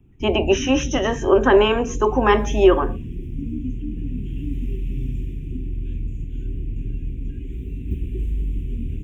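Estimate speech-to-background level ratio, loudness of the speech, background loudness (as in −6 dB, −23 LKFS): 11.0 dB, −18.5 LKFS, −29.5 LKFS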